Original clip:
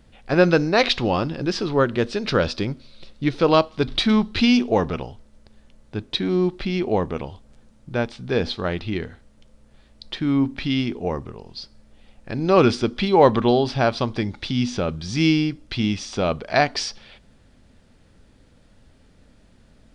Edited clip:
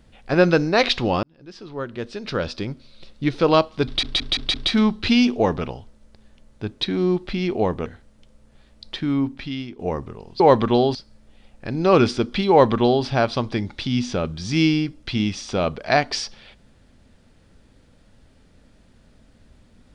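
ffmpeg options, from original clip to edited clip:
-filter_complex "[0:a]asplit=10[s0][s1][s2][s3][s4][s5][s6][s7][s8][s9];[s0]atrim=end=1.23,asetpts=PTS-STARTPTS,afade=t=out:st=1.226:d=0.004:c=hsin[s10];[s1]atrim=start=1.23:end=4.032,asetpts=PTS-STARTPTS,afade=t=in:d=2.03[s11];[s2]atrim=start=3.858:end=4.032[s12];[s3]atrim=start=3.858:end=4.032[s13];[s4]atrim=start=3.858:end=4.032[s14];[s5]atrim=start=3.858:end=7.182[s15];[s6]atrim=start=9.048:end=10.98,asetpts=PTS-STARTPTS,afade=t=out:st=1.122:d=0.81:silence=0.211349[s16];[s7]atrim=start=10.98:end=11.592,asetpts=PTS-STARTPTS,afade=t=in:d=0.004:c=hsin:silence=0.211349[s17];[s8]atrim=start=13.138:end=13.692[s18];[s9]atrim=start=11.588[s19];[s10][s11]concat=n=2:v=0:a=1[s20];[s20][s12]acrossfade=d=0.004:c1=hsin:c2=hsin[s21];[s21][s13]acrossfade=d=0.004:c1=hsin:c2=hsin[s22];[s22][s14]acrossfade=d=0.004:c1=hsin:c2=hsin[s23];[s23][s15]acrossfade=d=0.004:c1=hsin:c2=hsin[s24];[s16][s17]concat=n=2:v=0:a=1[s25];[s24][s25]acrossfade=d=0.004:c1=hsin:c2=hsin[s26];[s26][s18]acrossfade=d=0.004:c1=hsin:c2=hsin[s27];[s27][s19]acrossfade=d=0.004:c1=hsin:c2=hsin"

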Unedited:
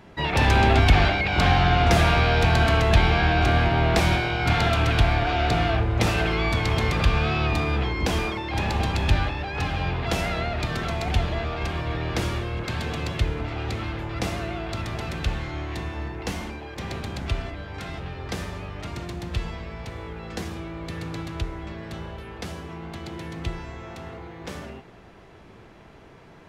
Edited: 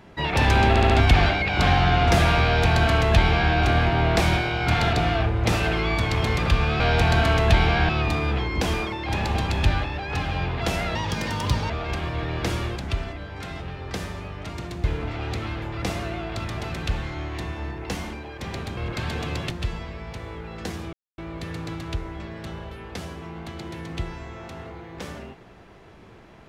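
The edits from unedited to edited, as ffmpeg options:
-filter_complex "[0:a]asplit=14[s0][s1][s2][s3][s4][s5][s6][s7][s8][s9][s10][s11][s12][s13];[s0]atrim=end=0.762[s14];[s1]atrim=start=0.688:end=0.762[s15];[s2]atrim=start=0.688:end=0.762[s16];[s3]atrim=start=0.688:end=4.722[s17];[s4]atrim=start=5.468:end=7.342[s18];[s5]atrim=start=2.228:end=3.322[s19];[s6]atrim=start=7.338:end=10.404[s20];[s7]atrim=start=10.4:end=11.42,asetpts=PTS-STARTPTS,asetrate=59976,aresample=44100[s21];[s8]atrim=start=11.416:end=12.482[s22];[s9]atrim=start=17.138:end=19.222[s23];[s10]atrim=start=13.208:end=17.142[s24];[s11]atrim=start=12.478:end=13.212[s25];[s12]atrim=start=19.218:end=20.65,asetpts=PTS-STARTPTS,afade=t=out:st=1.428:d=0.004:c=hsin,apad=pad_dur=0.25[s26];[s13]atrim=start=20.65,asetpts=PTS-STARTPTS,afade=t=in:d=0.004:c=hsin[s27];[s14][s15]acrossfade=d=0.004:c1=hsin:c2=hsin[s28];[s28][s16]acrossfade=d=0.004:c1=hsin:c2=hsin[s29];[s29][s17]acrossfade=d=0.004:c1=hsin:c2=hsin[s30];[s30][s18]acrossfade=d=0.004:c1=hsin:c2=hsin[s31];[s31][s19]acrossfade=d=0.004:c1=hsin:c2=hsin[s32];[s32][s20]acrossfade=d=0.004:c1=hsin:c2=hsin[s33];[s33][s21]acrossfade=d=0.004:c1=hsin:c2=hsin[s34];[s34][s22]acrossfade=d=0.004:c1=hsin:c2=hsin[s35];[s35][s23]acrossfade=d=0.004:c1=hsin:c2=hsin[s36];[s36][s24]acrossfade=d=0.004:c1=hsin:c2=hsin[s37];[s37][s25]acrossfade=d=0.004:c1=hsin:c2=hsin[s38];[s26][s27]concat=n=2:v=0:a=1[s39];[s38][s39]acrossfade=d=0.004:c1=hsin:c2=hsin"

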